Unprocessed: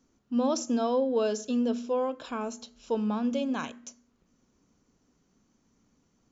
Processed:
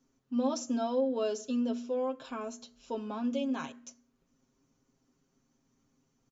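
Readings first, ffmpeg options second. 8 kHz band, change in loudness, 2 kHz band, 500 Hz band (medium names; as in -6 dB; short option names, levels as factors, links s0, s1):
no reading, -4.0 dB, -5.0 dB, -4.5 dB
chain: -af "aecho=1:1:7.5:0.76,volume=0.473"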